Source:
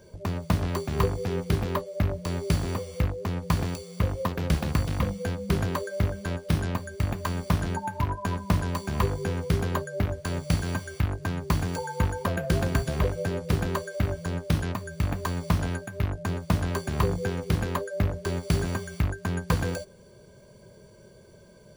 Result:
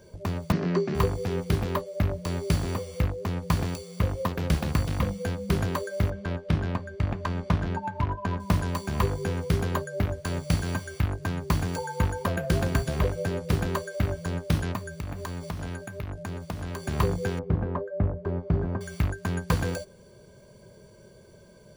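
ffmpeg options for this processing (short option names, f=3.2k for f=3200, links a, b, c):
-filter_complex "[0:a]asettb=1/sr,asplit=3[a][b][c];[a]atrim=end=0.524[d];[b]atrim=start=0.52:end=0.95,asetpts=PTS-STARTPTS,afade=t=in:d=0.004:c=qsin,afade=t=out:st=0.426:d=0.004:c=qsin,highpass=f=150:w=0.5412,highpass=f=150:w=1.3066,equalizer=f=180:t=q:w=4:g=10,equalizer=f=380:t=q:w=4:g=9,equalizer=f=860:t=q:w=4:g=-4,equalizer=f=1.8k:t=q:w=4:g=3,equalizer=f=3.5k:t=q:w=4:g=-7,lowpass=f=5.5k:w=0.5412,lowpass=f=5.5k:w=1.3066[e];[c]atrim=start=0.946[f];[d][e]acrossfade=d=0.004:c1=hsin:c2=qsin[g];[g][f]acrossfade=d=0.004:c1=qsin:c2=hsin,asettb=1/sr,asplit=3[h][i][j];[h]atrim=end=6.104[k];[i]atrim=start=6.1:end=8.4,asetpts=PTS-STARTPTS,afade=t=in:d=0.004:c=qsin,afade=t=out:st=2.296:d=0.004:c=qsin,adynamicsmooth=sensitivity=2.5:basefreq=3k[l];[j]atrim=start=8.396[m];[k][l]acrossfade=d=0.004:c1=hsin:c2=qsin[n];[n][m]acrossfade=d=0.004:c1=qsin:c2=hsin,asettb=1/sr,asplit=3[o][p][q];[o]atrim=end=14.884[r];[p]atrim=start=14.88:end=16.85,asetpts=PTS-STARTPTS,afade=t=in:d=0.004:c=qsin,afade=t=out:st=1.966:d=0.004:c=qsin,acompressor=threshold=-31dB:ratio=4:attack=3.2:release=140:knee=1:detection=peak[s];[q]atrim=start=16.846[t];[r][s]acrossfade=d=0.004:c1=hsin:c2=qsin[u];[u][t]acrossfade=d=0.004:c1=qsin:c2=hsin,asettb=1/sr,asplit=3[v][w][x];[v]atrim=end=17.394[y];[w]atrim=start=17.39:end=18.81,asetpts=PTS-STARTPTS,afade=t=in:d=0.004:c=qsin,afade=t=out:st=1.416:d=0.004:c=qsin,lowpass=1k[z];[x]atrim=start=18.806[aa];[y][z]acrossfade=d=0.004:c1=hsin:c2=qsin[ab];[ab][aa]acrossfade=d=0.004:c1=qsin:c2=hsin"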